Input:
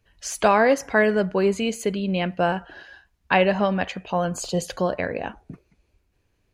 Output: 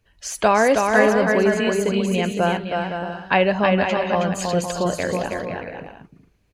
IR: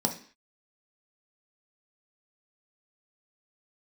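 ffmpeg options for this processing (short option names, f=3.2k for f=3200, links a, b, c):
-af "aecho=1:1:320|512|627.2|696.3|737.8:0.631|0.398|0.251|0.158|0.1,volume=1dB"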